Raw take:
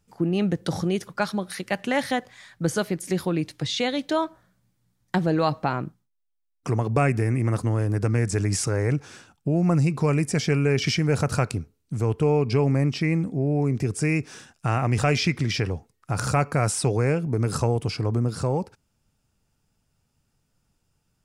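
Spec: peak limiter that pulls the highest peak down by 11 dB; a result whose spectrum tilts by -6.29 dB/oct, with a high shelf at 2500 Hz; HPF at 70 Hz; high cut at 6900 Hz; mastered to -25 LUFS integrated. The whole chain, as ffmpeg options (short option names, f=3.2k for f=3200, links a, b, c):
-af "highpass=70,lowpass=6.9k,highshelf=f=2.5k:g=-5,volume=4.5dB,alimiter=limit=-14.5dB:level=0:latency=1"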